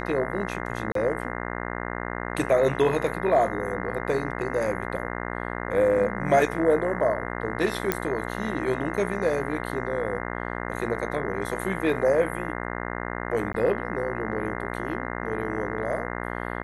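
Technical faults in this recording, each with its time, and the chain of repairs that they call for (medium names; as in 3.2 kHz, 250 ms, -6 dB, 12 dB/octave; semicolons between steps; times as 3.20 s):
buzz 60 Hz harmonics 35 -32 dBFS
0.92–0.95 s: dropout 33 ms
7.92 s: pop -7 dBFS
13.53–13.54 s: dropout 13 ms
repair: de-click; de-hum 60 Hz, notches 35; interpolate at 0.92 s, 33 ms; interpolate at 13.53 s, 13 ms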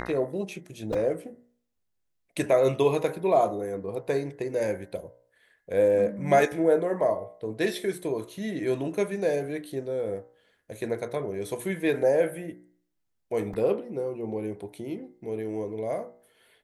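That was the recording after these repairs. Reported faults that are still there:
nothing left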